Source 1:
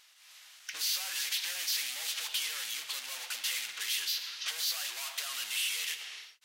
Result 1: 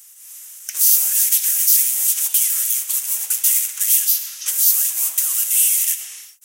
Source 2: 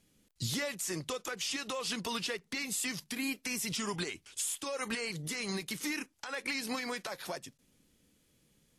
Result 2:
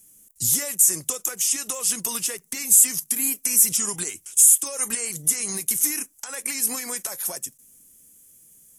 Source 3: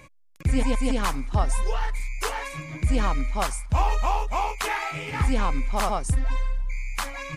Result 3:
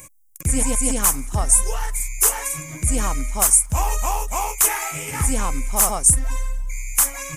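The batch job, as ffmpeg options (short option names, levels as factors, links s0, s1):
-af "acontrast=84,aexciter=amount=13:drive=4.7:freq=6300,volume=0.501"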